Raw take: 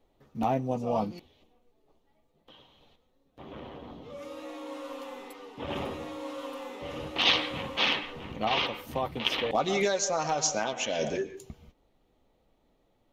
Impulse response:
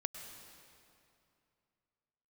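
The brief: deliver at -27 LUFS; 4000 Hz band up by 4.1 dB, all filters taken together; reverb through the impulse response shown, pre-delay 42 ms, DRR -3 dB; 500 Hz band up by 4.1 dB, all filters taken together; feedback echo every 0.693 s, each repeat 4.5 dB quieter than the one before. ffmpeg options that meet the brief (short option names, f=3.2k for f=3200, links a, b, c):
-filter_complex "[0:a]equalizer=f=500:t=o:g=5,equalizer=f=4k:t=o:g=5.5,aecho=1:1:693|1386|2079|2772|3465|4158|4851|5544|6237:0.596|0.357|0.214|0.129|0.0772|0.0463|0.0278|0.0167|0.01,asplit=2[a][b];[1:a]atrim=start_sample=2205,adelay=42[c];[b][c]afir=irnorm=-1:irlink=0,volume=3.5dB[d];[a][d]amix=inputs=2:normalize=0,volume=-5.5dB"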